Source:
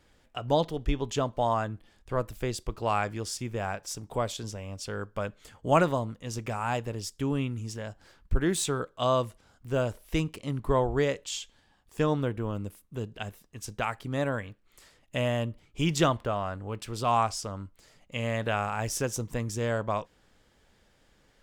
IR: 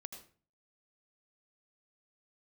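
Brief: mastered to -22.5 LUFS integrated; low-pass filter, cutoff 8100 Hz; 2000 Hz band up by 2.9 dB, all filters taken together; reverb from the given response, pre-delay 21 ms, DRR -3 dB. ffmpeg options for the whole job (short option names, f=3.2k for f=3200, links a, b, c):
-filter_complex "[0:a]lowpass=8.1k,equalizer=f=2k:t=o:g=4,asplit=2[a][b];[1:a]atrim=start_sample=2205,adelay=21[c];[b][c]afir=irnorm=-1:irlink=0,volume=7.5dB[d];[a][d]amix=inputs=2:normalize=0,volume=3dB"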